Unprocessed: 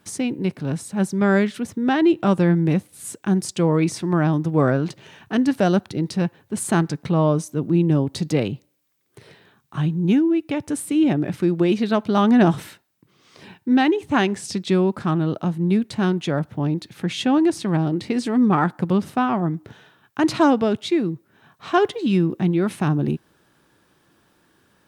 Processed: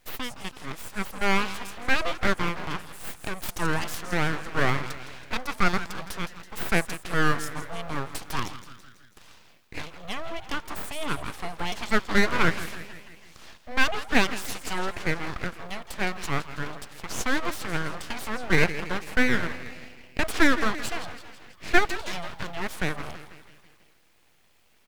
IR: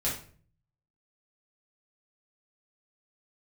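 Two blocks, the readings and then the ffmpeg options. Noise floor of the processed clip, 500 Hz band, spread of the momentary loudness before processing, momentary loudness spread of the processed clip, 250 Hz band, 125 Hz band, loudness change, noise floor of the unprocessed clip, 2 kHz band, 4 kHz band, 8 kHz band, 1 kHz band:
−59 dBFS, −10.0 dB, 8 LU, 15 LU, −14.0 dB, −12.5 dB, −7.5 dB, −63 dBFS, +4.0 dB, 0.0 dB, −3.0 dB, −4.5 dB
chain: -filter_complex "[0:a]highpass=frequency=720:width_type=q:width=1.7,asplit=7[link_01][link_02][link_03][link_04][link_05][link_06][link_07];[link_02]adelay=164,afreqshift=63,volume=-13dB[link_08];[link_03]adelay=328,afreqshift=126,volume=-17.9dB[link_09];[link_04]adelay=492,afreqshift=189,volume=-22.8dB[link_10];[link_05]adelay=656,afreqshift=252,volume=-27.6dB[link_11];[link_06]adelay=820,afreqshift=315,volume=-32.5dB[link_12];[link_07]adelay=984,afreqshift=378,volume=-37.4dB[link_13];[link_01][link_08][link_09][link_10][link_11][link_12][link_13]amix=inputs=7:normalize=0,aeval=exprs='abs(val(0))':channel_layout=same"

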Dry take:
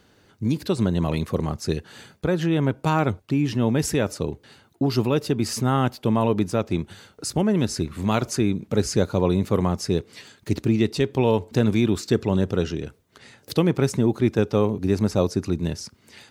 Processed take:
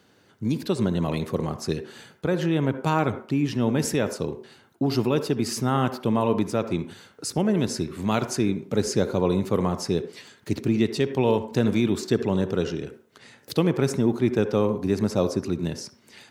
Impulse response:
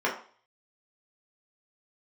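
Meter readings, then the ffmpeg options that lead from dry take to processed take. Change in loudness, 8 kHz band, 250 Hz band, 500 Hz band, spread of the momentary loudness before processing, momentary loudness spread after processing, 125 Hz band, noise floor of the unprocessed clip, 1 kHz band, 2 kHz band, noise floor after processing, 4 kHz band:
−1.5 dB, −1.5 dB, −1.5 dB, −1.0 dB, 8 LU, 9 LU, −3.5 dB, −59 dBFS, −1.0 dB, −1.0 dB, −59 dBFS, −1.5 dB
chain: -filter_complex "[0:a]highpass=110,asplit=2[link_01][link_02];[1:a]atrim=start_sample=2205,adelay=62[link_03];[link_02][link_03]afir=irnorm=-1:irlink=0,volume=-23dB[link_04];[link_01][link_04]amix=inputs=2:normalize=0,volume=-1.5dB"

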